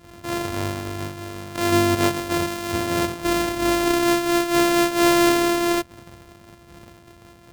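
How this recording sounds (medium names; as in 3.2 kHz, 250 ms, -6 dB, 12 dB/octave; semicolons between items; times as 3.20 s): a buzz of ramps at a fixed pitch in blocks of 128 samples; random flutter of the level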